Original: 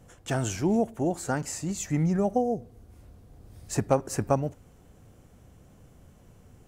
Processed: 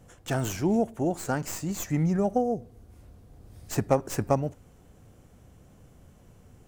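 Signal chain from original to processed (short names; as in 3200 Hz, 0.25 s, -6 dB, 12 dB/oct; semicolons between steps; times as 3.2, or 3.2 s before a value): tracing distortion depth 0.07 ms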